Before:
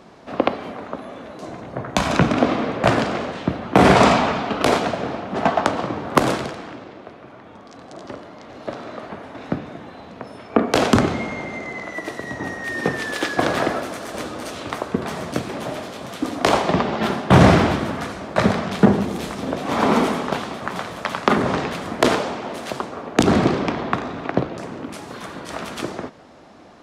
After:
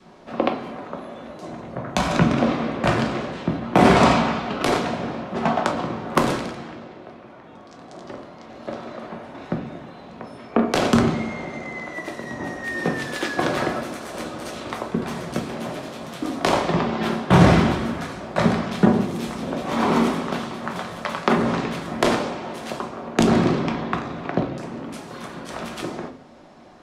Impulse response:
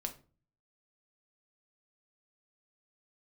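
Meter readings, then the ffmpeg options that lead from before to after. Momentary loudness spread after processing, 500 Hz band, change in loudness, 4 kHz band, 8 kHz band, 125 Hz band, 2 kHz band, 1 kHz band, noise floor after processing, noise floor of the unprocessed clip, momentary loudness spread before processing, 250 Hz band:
18 LU, −2.5 dB, −2.0 dB, −2.5 dB, −2.5 dB, −1.0 dB, −2.5 dB, −2.5 dB, −44 dBFS, −42 dBFS, 18 LU, −0.5 dB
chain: -filter_complex "[0:a]adynamicequalizer=threshold=0.0282:dfrequency=670:dqfactor=1.4:tfrequency=670:tqfactor=1.4:attack=5:release=100:ratio=0.375:range=1.5:mode=cutabove:tftype=bell[link_01];[1:a]atrim=start_sample=2205[link_02];[link_01][link_02]afir=irnorm=-1:irlink=0,volume=-1.5dB"

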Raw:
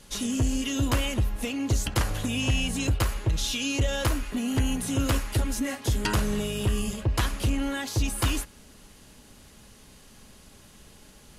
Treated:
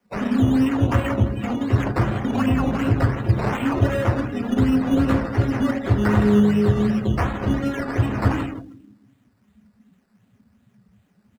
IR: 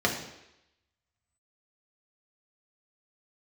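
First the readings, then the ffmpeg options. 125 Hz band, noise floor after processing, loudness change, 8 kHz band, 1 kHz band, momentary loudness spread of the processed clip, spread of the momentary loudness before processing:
+7.5 dB, −63 dBFS, +6.5 dB, below −10 dB, +8.0 dB, 6 LU, 3 LU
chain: -filter_complex "[0:a]highshelf=frequency=11000:gain=-10.5,bandreject=frequency=480:width=12[link_01];[1:a]atrim=start_sample=2205,afade=type=out:start_time=0.3:duration=0.01,atrim=end_sample=13671[link_02];[link_01][link_02]afir=irnorm=-1:irlink=0,flanger=delay=3.6:depth=7.6:regen=-52:speed=0.41:shape=triangular,aemphasis=mode=production:type=75kf,asplit=2[link_03][link_04];[link_04]adelay=160,lowpass=frequency=4900:poles=1,volume=-10.5dB,asplit=2[link_05][link_06];[link_06]adelay=160,lowpass=frequency=4900:poles=1,volume=0.47,asplit=2[link_07][link_08];[link_08]adelay=160,lowpass=frequency=4900:poles=1,volume=0.47,asplit=2[link_09][link_10];[link_10]adelay=160,lowpass=frequency=4900:poles=1,volume=0.47,asplit=2[link_11][link_12];[link_12]adelay=160,lowpass=frequency=4900:poles=1,volume=0.47[link_13];[link_03][link_05][link_07][link_09][link_11][link_13]amix=inputs=6:normalize=0,asplit=2[link_14][link_15];[link_15]aeval=exprs='sgn(val(0))*max(abs(val(0))-0.0282,0)':channel_layout=same,volume=-2.5dB[link_16];[link_14][link_16]amix=inputs=2:normalize=0,acrusher=samples=11:mix=1:aa=0.000001:lfo=1:lforange=6.6:lforate=2.7,afftdn=noise_reduction=19:noise_floor=-28,acrossover=split=110|1800[link_17][link_18][link_19];[link_19]acompressor=threshold=-34dB:ratio=6[link_20];[link_17][link_18][link_20]amix=inputs=3:normalize=0,volume=-7.5dB"

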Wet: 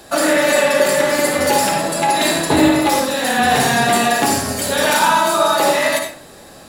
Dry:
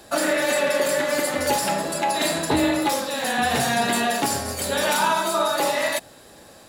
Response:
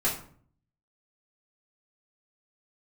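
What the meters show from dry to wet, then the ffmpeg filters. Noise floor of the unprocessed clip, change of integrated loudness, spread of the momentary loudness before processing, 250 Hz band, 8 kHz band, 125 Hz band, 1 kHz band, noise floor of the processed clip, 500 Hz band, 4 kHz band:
−48 dBFS, +7.0 dB, 4 LU, +7.5 dB, +6.5 dB, +7.5 dB, +7.5 dB, −41 dBFS, +7.0 dB, +6.0 dB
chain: -filter_complex "[0:a]asplit=2[link_01][link_02];[1:a]atrim=start_sample=2205,adelay=54[link_03];[link_02][link_03]afir=irnorm=-1:irlink=0,volume=-12dB[link_04];[link_01][link_04]amix=inputs=2:normalize=0,volume=5dB"

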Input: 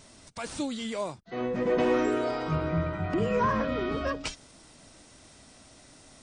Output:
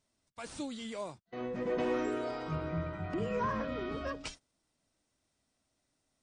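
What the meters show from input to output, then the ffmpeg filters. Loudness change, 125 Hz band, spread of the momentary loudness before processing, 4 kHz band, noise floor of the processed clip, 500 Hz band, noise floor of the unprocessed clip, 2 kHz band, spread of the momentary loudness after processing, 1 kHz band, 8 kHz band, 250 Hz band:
−7.5 dB, −7.5 dB, 12 LU, −7.5 dB, −81 dBFS, −7.5 dB, −55 dBFS, −7.5 dB, 12 LU, −7.5 dB, −8.0 dB, −7.5 dB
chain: -af "agate=range=-19dB:threshold=-41dB:ratio=16:detection=peak,volume=-7.5dB"

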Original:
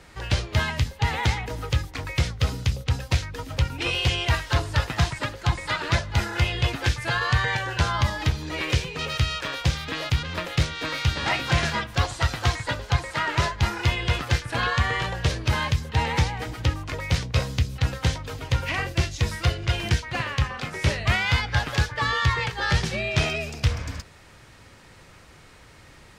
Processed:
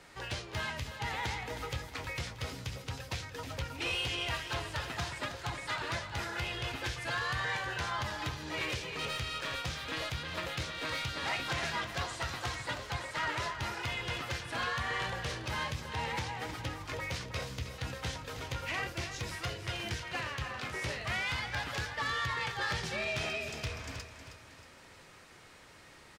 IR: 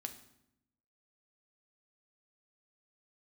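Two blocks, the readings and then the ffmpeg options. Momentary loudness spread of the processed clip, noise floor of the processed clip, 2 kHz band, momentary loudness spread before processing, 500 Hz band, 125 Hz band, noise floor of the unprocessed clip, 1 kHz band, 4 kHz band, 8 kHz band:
7 LU, −55 dBFS, −8.5 dB, 5 LU, −9.0 dB, −16.5 dB, −50 dBFS, −8.5 dB, −9.0 dB, −8.5 dB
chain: -af "alimiter=limit=-15.5dB:level=0:latency=1:release=359,lowshelf=frequency=160:gain=-10.5,asoftclip=type=tanh:threshold=-23.5dB,flanger=delay=7.1:depth=9.3:regen=-67:speed=0.36:shape=sinusoidal,aecho=1:1:316|632|948|1264|1580:0.316|0.136|0.0585|0.0251|0.0108"

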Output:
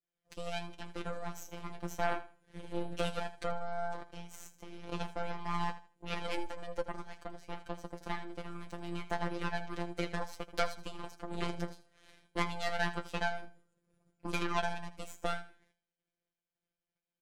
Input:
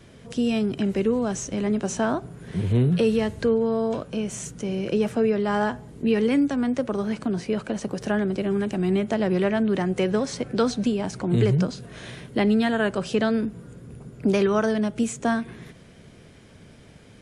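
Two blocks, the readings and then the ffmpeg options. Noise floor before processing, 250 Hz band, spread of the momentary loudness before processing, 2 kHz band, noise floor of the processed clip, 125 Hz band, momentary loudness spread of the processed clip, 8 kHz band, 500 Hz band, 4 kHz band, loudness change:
−49 dBFS, −21.0 dB, 9 LU, −7.5 dB, below −85 dBFS, −17.5 dB, 12 LU, −15.0 dB, −17.0 dB, −8.0 dB, −15.0 dB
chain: -filter_complex "[0:a]agate=range=-33dB:threshold=-35dB:ratio=3:detection=peak,equalizer=frequency=140:width=0.83:gain=-11,asplit=2[link_01][link_02];[link_02]acompressor=threshold=-37dB:ratio=6,volume=-1dB[link_03];[link_01][link_03]amix=inputs=2:normalize=0,aeval=exprs='0.299*(cos(1*acos(clip(val(0)/0.299,-1,1)))-cos(1*PI/2))+0.0944*(cos(3*acos(clip(val(0)/0.299,-1,1)))-cos(3*PI/2))+0.00237*(cos(4*acos(clip(val(0)/0.299,-1,1)))-cos(4*PI/2))+0.00944*(cos(6*acos(clip(val(0)/0.299,-1,1)))-cos(6*PI/2))':channel_layout=same,flanger=delay=7:depth=8.7:regen=41:speed=0.28:shape=sinusoidal,asoftclip=type=tanh:threshold=-18.5dB,afftfilt=real='hypot(re,im)*cos(PI*b)':imag='0':win_size=1024:overlap=0.75,aecho=1:1:80|160|240:0.178|0.0427|0.0102,volume=7dB"

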